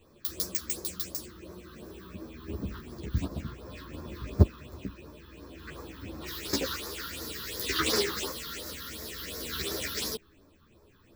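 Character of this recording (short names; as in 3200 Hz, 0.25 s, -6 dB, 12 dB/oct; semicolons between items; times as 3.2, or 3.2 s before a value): phasing stages 6, 2.8 Hz, lowest notch 600–2900 Hz; tremolo triangle 0.54 Hz, depth 35%; a shimmering, thickened sound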